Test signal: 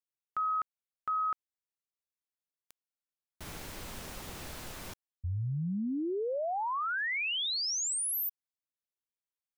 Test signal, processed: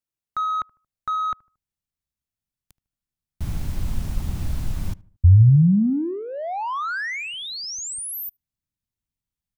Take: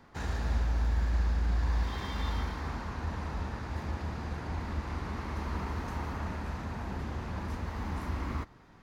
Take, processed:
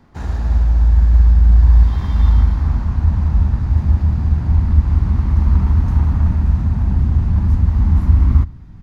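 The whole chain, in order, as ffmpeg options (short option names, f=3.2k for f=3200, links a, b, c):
-filter_complex "[0:a]equalizer=f=470:t=o:w=0.55:g=-4.5,asplit=2[a][b];[b]adelay=76,lowpass=f=1.5k:p=1,volume=-20.5dB,asplit=2[c][d];[d]adelay=76,lowpass=f=1.5k:p=1,volume=0.43,asplit=2[e][f];[f]adelay=76,lowpass=f=1.5k:p=1,volume=0.43[g];[a][c][e][g]amix=inputs=4:normalize=0,asplit=2[h][i];[i]adynamicsmooth=sensitivity=3.5:basefreq=740,volume=2.5dB[j];[h][j]amix=inputs=2:normalize=0,asubboost=boost=6.5:cutoff=170,volume=2dB"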